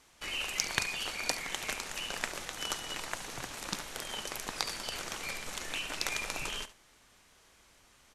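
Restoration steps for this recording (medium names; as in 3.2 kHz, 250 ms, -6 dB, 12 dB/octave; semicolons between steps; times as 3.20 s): clip repair -8.5 dBFS; inverse comb 71 ms -15.5 dB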